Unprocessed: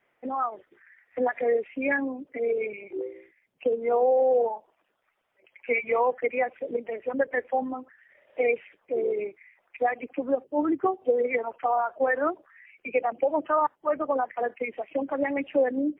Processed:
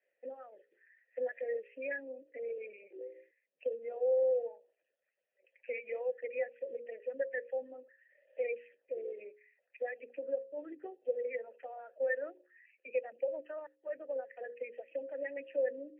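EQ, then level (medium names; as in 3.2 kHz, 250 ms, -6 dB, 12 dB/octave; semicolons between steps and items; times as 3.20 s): hum notches 60/120/180/240/300/360/420/480/540 Hz; dynamic bell 580 Hz, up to -5 dB, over -33 dBFS, Q 0.74; vowel filter e; -1.5 dB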